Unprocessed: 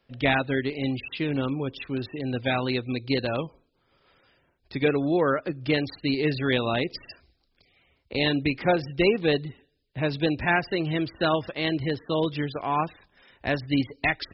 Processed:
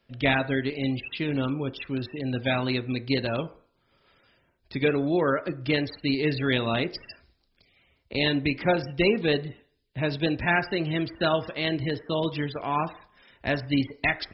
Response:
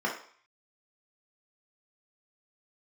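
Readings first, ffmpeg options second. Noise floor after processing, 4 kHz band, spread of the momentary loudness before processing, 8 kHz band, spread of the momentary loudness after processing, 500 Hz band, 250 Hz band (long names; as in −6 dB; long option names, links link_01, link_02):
−70 dBFS, +0.5 dB, 8 LU, can't be measured, 8 LU, −1.0 dB, −0.5 dB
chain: -filter_complex "[0:a]asplit=2[link_01][link_02];[1:a]atrim=start_sample=2205,lowpass=3300[link_03];[link_02][link_03]afir=irnorm=-1:irlink=0,volume=-19.5dB[link_04];[link_01][link_04]amix=inputs=2:normalize=0"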